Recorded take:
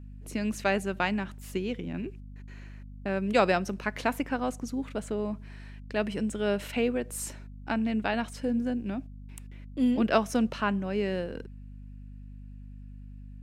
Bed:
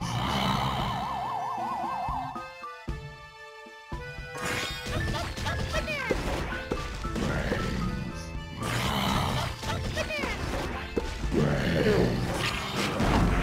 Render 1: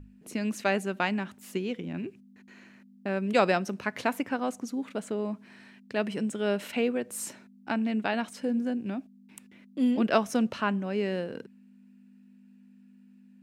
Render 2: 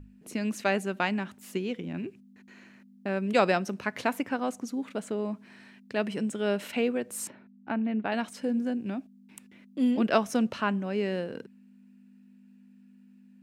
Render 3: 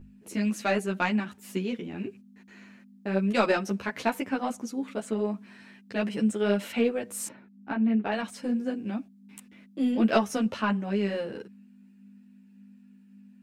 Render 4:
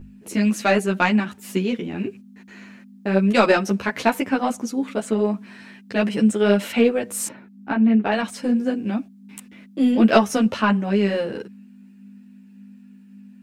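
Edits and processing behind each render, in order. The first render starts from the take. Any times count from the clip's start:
mains-hum notches 50/100/150 Hz
0:07.27–0:08.12: high-frequency loss of the air 420 metres
in parallel at −4 dB: soft clipping −19 dBFS, distortion −15 dB; on the sum: string-ensemble chorus
level +8 dB; brickwall limiter −1 dBFS, peak gain reduction 1 dB

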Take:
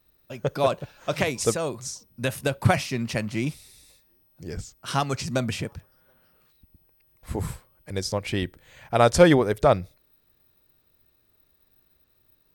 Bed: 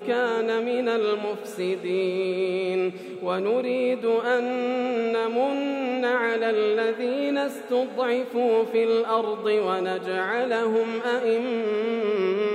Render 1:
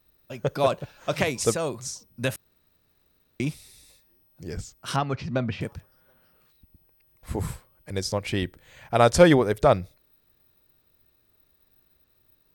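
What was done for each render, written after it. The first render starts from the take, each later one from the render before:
0:02.36–0:03.40: fill with room tone
0:04.96–0:05.61: high-frequency loss of the air 280 metres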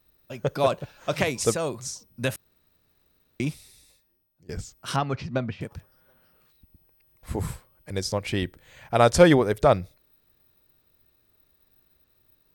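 0:03.49–0:04.49: fade out, to −20.5 dB
0:05.27–0:05.71: expander for the loud parts, over −38 dBFS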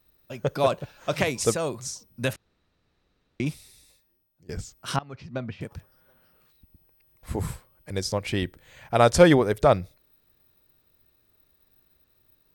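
0:02.33–0:03.46: high-frequency loss of the air 76 metres
0:04.99–0:05.75: fade in, from −21 dB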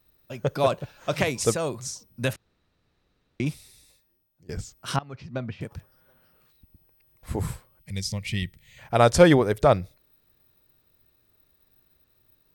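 0:07.81–0:08.78: gain on a spectral selection 230–1,800 Hz −14 dB
parametric band 120 Hz +2 dB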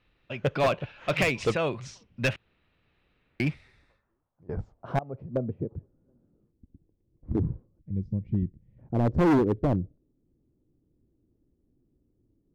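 low-pass filter sweep 2,700 Hz → 300 Hz, 0:03.15–0:06.01
hard clipping −18.5 dBFS, distortion −6 dB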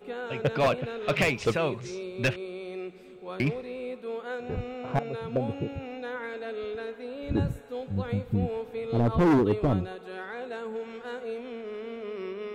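mix in bed −12.5 dB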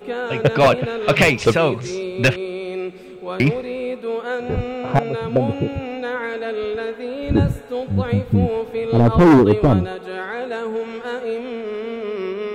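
level +10.5 dB

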